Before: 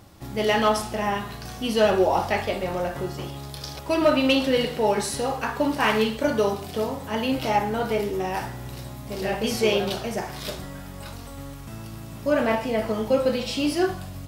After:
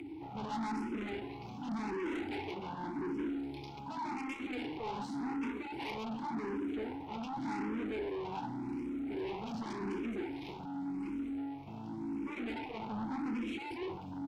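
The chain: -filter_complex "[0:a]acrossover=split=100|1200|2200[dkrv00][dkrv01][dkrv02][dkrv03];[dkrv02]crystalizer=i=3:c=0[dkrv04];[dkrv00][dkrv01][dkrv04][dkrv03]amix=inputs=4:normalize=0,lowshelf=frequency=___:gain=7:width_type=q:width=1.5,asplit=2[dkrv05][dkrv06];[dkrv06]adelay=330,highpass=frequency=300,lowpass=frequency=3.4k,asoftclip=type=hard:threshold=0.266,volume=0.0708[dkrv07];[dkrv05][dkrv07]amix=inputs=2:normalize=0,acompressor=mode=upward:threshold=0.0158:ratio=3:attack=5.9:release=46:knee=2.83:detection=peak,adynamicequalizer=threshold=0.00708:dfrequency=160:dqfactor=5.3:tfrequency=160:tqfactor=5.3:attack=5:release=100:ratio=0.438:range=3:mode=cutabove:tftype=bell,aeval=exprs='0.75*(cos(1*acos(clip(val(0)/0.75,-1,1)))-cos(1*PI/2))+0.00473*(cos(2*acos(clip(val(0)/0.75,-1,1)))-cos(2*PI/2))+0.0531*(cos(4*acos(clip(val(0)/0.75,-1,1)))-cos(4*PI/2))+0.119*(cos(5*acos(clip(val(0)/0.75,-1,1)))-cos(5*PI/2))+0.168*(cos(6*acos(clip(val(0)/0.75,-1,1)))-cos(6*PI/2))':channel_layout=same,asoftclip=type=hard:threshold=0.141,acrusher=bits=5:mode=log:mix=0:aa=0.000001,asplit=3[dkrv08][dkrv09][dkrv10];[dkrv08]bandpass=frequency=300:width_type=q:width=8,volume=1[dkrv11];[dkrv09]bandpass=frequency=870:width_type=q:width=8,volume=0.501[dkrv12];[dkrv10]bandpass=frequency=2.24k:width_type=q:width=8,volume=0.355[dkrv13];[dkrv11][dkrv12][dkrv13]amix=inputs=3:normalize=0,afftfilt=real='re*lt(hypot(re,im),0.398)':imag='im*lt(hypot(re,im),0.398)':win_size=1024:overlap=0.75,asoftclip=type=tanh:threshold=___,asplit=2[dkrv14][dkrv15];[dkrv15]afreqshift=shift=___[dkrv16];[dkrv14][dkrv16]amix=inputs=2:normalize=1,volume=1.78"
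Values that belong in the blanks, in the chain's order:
470, 0.0126, 0.88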